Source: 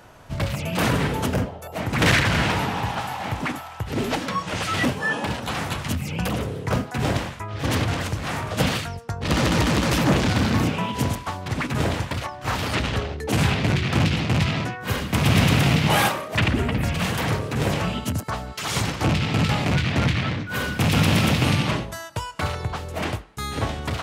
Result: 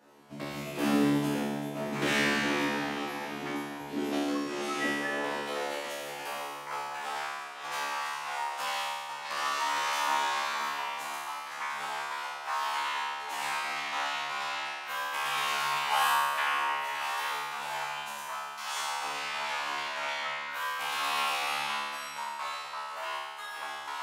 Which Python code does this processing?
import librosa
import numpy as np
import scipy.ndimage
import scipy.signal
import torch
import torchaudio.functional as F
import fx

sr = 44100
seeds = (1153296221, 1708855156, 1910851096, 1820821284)

y = fx.comb_fb(x, sr, f0_hz=72.0, decay_s=1.5, harmonics='all', damping=0.0, mix_pct=100)
y = fx.filter_sweep_highpass(y, sr, from_hz=270.0, to_hz=970.0, start_s=4.48, end_s=6.64, q=2.6)
y = fx.echo_filtered(y, sr, ms=505, feedback_pct=49, hz=3800.0, wet_db=-10.0)
y = y * 10.0 ** (7.0 / 20.0)